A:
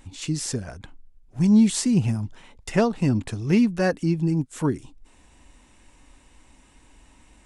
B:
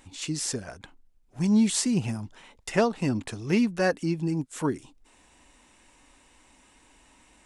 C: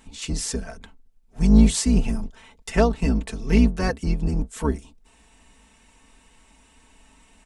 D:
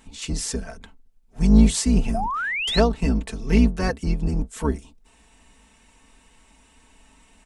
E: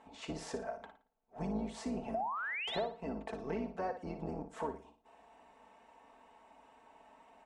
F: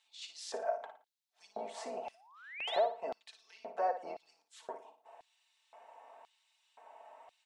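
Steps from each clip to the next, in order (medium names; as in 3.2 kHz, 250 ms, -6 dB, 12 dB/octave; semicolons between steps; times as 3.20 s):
bass shelf 190 Hz -11.5 dB
octave divider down 2 oct, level +4 dB; comb 4.5 ms
painted sound rise, 2.14–2.80 s, 640–4500 Hz -26 dBFS
band-pass filter 720 Hz, Q 2.1; compression 6:1, threshold -41 dBFS, peak gain reduction 20.5 dB; on a send: flutter echo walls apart 9.8 m, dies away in 0.36 s; on the sum: trim +5 dB
LFO high-pass square 0.96 Hz 630–3900 Hz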